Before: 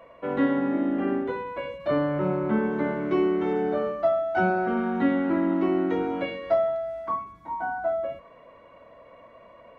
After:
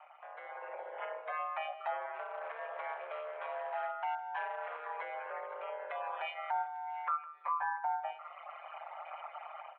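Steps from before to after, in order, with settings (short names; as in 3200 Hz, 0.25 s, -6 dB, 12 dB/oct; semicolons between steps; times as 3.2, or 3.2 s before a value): reverb removal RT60 1 s; compressor 3:1, threshold -42 dBFS, peak gain reduction 17.5 dB; limiter -34.5 dBFS, peak gain reduction 7 dB; AGC gain up to 13.5 dB; 2.13–4.81 hard clip -26.5 dBFS, distortion -17 dB; ring modulator 80 Hz; echo 0.16 s -18.5 dB; mistuned SSB +160 Hz 500–2900 Hz; gain -2.5 dB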